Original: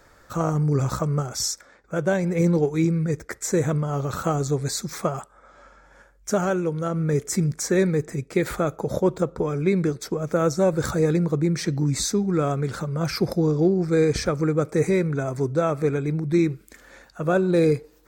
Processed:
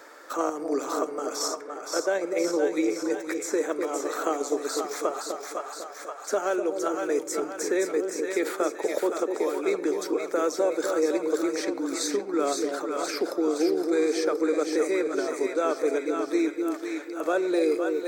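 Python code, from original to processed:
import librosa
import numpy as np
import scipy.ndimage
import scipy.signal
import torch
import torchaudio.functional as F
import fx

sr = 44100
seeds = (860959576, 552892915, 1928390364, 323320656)

p1 = scipy.signal.sosfilt(scipy.signal.butter(8, 280.0, 'highpass', fs=sr, output='sos'), x)
p2 = fx.level_steps(p1, sr, step_db=13)
p3 = p1 + F.gain(torch.from_numpy(p2), 2.0).numpy()
p4 = fx.vibrato(p3, sr, rate_hz=2.0, depth_cents=6.5)
p5 = fx.echo_split(p4, sr, split_hz=640.0, low_ms=249, high_ms=517, feedback_pct=52, wet_db=-5.5)
p6 = fx.room_shoebox(p5, sr, seeds[0], volume_m3=2000.0, walls='furnished', distance_m=0.41)
p7 = fx.band_squash(p6, sr, depth_pct=40)
y = F.gain(torch.from_numpy(p7), -7.5).numpy()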